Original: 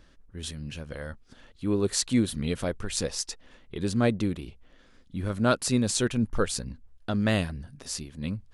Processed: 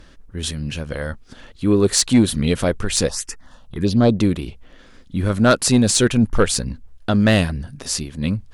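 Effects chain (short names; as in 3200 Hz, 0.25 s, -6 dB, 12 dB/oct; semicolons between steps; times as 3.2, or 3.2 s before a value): 3.09–4.16 envelope phaser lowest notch 310 Hz, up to 2000 Hz, full sweep at -23 dBFS; sine folder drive 4 dB, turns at -9 dBFS; gain +3 dB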